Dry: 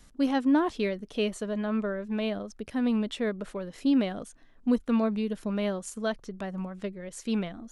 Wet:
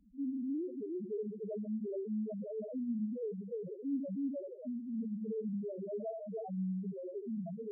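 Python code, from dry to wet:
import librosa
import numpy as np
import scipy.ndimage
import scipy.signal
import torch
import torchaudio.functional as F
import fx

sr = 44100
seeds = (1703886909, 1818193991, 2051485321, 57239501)

p1 = fx.spacing_loss(x, sr, db_at_10k=22)
p2 = p1 + fx.echo_stepped(p1, sr, ms=309, hz=440.0, octaves=1.4, feedback_pct=70, wet_db=-4, dry=0)
p3 = 10.0 ** (-30.0 / 20.0) * np.tanh(p2 / 10.0 ** (-30.0 / 20.0))
p4 = fx.leveller(p3, sr, passes=3)
p5 = fx.highpass(p4, sr, hz=270.0, slope=6)
p6 = fx.high_shelf(p5, sr, hz=5800.0, db=10.5)
p7 = fx.echo_feedback(p6, sr, ms=75, feedback_pct=54, wet_db=-5.0)
p8 = fx.spec_topn(p7, sr, count=1)
y = p8 * librosa.db_to_amplitude(3.0)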